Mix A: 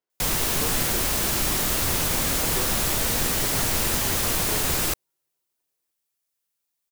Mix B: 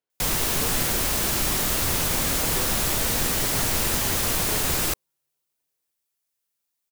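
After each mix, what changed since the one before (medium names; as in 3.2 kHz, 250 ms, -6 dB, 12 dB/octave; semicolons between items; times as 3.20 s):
reverb: on, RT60 0.55 s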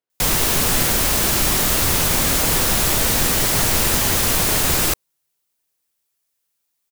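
background +6.0 dB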